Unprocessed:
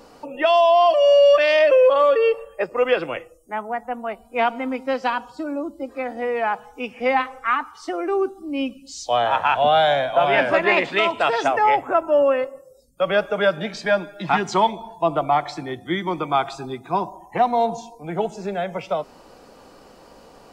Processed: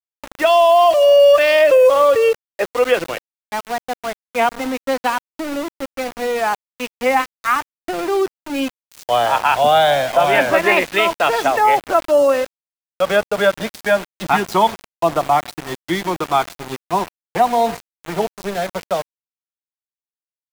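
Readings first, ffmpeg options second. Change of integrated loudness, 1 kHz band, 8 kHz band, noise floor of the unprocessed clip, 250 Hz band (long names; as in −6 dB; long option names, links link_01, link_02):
+3.5 dB, +3.5 dB, can't be measured, −49 dBFS, +2.5 dB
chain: -af "aeval=exprs='val(0)*gte(abs(val(0)),0.0422)':channel_layout=same,volume=3.5dB"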